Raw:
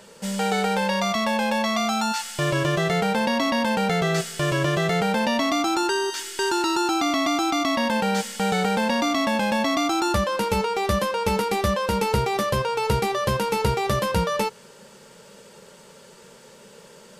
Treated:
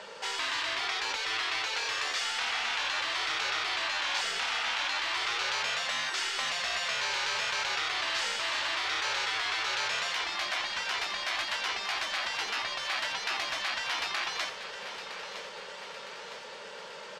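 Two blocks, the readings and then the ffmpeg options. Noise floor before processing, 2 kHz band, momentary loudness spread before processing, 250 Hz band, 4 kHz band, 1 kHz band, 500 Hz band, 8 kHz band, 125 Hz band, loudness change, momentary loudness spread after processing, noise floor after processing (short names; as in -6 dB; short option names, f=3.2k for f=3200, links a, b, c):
-49 dBFS, -2.0 dB, 3 LU, -30.5 dB, -0.5 dB, -11.0 dB, -19.0 dB, -6.0 dB, -31.5 dB, -7.0 dB, 10 LU, -44 dBFS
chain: -filter_complex "[0:a]asoftclip=type=hard:threshold=-24.5dB,highshelf=f=9.5k:g=-8.5,afftfilt=real='re*lt(hypot(re,im),0.0562)':imag='im*lt(hypot(re,im),0.0562)':win_size=1024:overlap=0.75,acrossover=split=510 5700:gain=0.126 1 0.0891[a][b][c];[a][b][c]amix=inputs=3:normalize=0,aecho=1:1:961|1922|2883|3844|4805|5766|6727:0.299|0.173|0.1|0.0582|0.0338|0.0196|0.0114,volume=7dB"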